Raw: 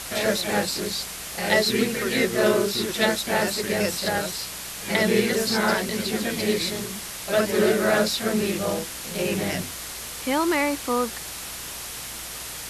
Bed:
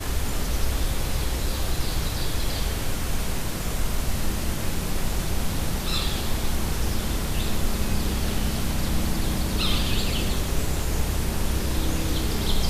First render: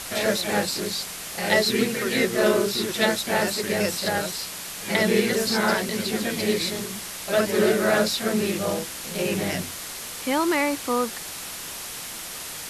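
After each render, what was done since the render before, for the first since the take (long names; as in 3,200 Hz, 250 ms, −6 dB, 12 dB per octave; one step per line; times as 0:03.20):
hum removal 60 Hz, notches 2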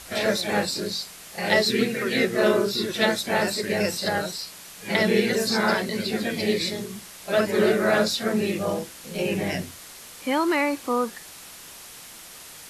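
noise reduction from a noise print 8 dB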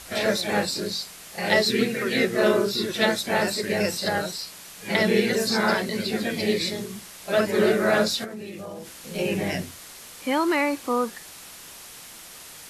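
0:08.24–0:09.01: downward compressor 5 to 1, threshold −34 dBFS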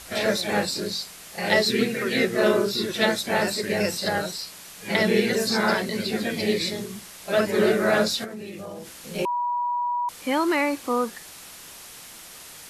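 0:09.25–0:10.09: beep over 969 Hz −22.5 dBFS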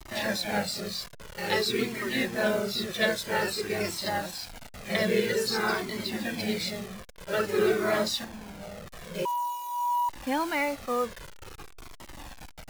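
hold until the input has moved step −32.5 dBFS
flanger whose copies keep moving one way falling 0.5 Hz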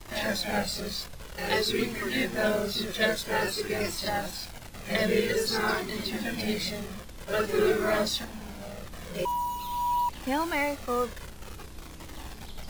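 mix in bed −20.5 dB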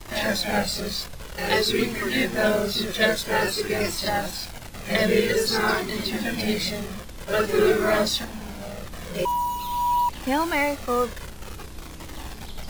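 level +5 dB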